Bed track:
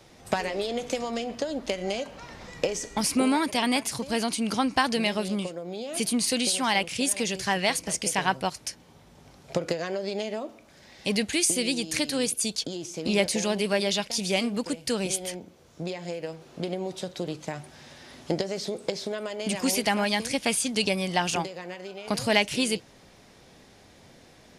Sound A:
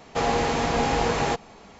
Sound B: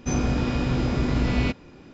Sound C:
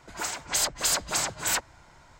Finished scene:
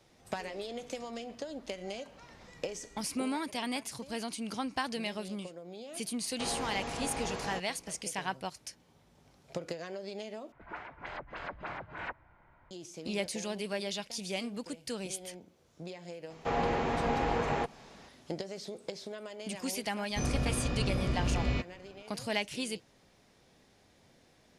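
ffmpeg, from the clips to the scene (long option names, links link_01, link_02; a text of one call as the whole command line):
ffmpeg -i bed.wav -i cue0.wav -i cue1.wav -i cue2.wav -filter_complex "[1:a]asplit=2[link_01][link_02];[0:a]volume=-10.5dB[link_03];[3:a]lowpass=frequency=2300:width=0.5412,lowpass=frequency=2300:width=1.3066[link_04];[link_02]acrossover=split=3100[link_05][link_06];[link_06]acompressor=threshold=-50dB:ratio=4:attack=1:release=60[link_07];[link_05][link_07]amix=inputs=2:normalize=0[link_08];[2:a]aecho=1:1:1.7:0.3[link_09];[link_03]asplit=2[link_10][link_11];[link_10]atrim=end=10.524[link_12];[link_04]atrim=end=2.19,asetpts=PTS-STARTPTS,volume=-8dB[link_13];[link_11]atrim=start=12.706[link_14];[link_01]atrim=end=1.79,asetpts=PTS-STARTPTS,volume=-14.5dB,afade=type=in:duration=0.004:curve=hsin,afade=type=out:start_time=1.786:duration=0.004:curve=hsin,adelay=6240[link_15];[link_08]atrim=end=1.79,asetpts=PTS-STARTPTS,volume=-7dB,afade=type=in:duration=0.004:curve=hsin,afade=type=out:start_time=1.786:duration=0.004:curve=hsin,adelay=16300[link_16];[link_09]atrim=end=1.93,asetpts=PTS-STARTPTS,volume=-8.5dB,afade=type=in:duration=0.004:curve=hsin,afade=type=out:start_time=1.926:duration=0.004:curve=hsin,adelay=20100[link_17];[link_12][link_13]acrossfade=duration=0.004:curve1=hsin:curve2=hsin[link_18];[link_18][link_14]acrossfade=duration=0.004:curve1=hsin:curve2=hsin[link_19];[link_19][link_15][link_16][link_17]amix=inputs=4:normalize=0" out.wav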